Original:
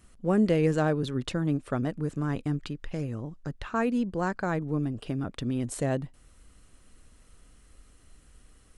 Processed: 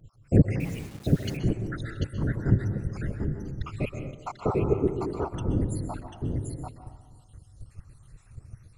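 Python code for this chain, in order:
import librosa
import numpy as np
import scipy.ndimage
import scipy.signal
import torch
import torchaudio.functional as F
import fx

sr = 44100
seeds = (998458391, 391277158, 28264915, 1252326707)

p1 = fx.spec_dropout(x, sr, seeds[0], share_pct=81)
p2 = p1 + 10.0 ** (-4.5 / 20.0) * np.pad(p1, (int(742 * sr / 1000.0), 0))[:len(p1)]
p3 = fx.whisperise(p2, sr, seeds[1])
p4 = fx.low_shelf_res(p3, sr, hz=160.0, db=6.5, q=1.5)
p5 = fx.rev_plate(p4, sr, seeds[2], rt60_s=1.3, hf_ratio=0.3, predelay_ms=115, drr_db=7.0)
p6 = fx.level_steps(p5, sr, step_db=22)
p7 = p5 + F.gain(torch.from_numpy(p6), -0.5).numpy()
p8 = fx.quant_dither(p7, sr, seeds[3], bits=8, dither='none', at=(0.6, 1.37))
y = fx.peak_eq(p8, sr, hz=400.0, db=14.5, octaves=0.48, at=(4.41, 5.33))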